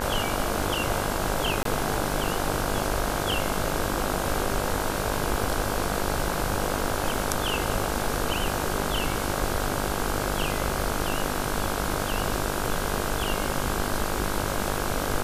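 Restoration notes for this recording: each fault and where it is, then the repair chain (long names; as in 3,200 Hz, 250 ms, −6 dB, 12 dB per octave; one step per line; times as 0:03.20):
mains buzz 50 Hz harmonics 33 −31 dBFS
0:01.63–0:01.65: drop-out 23 ms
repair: hum removal 50 Hz, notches 33
repair the gap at 0:01.63, 23 ms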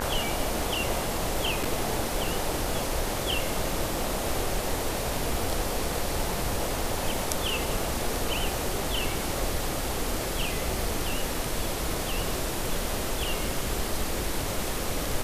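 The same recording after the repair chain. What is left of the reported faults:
none of them is left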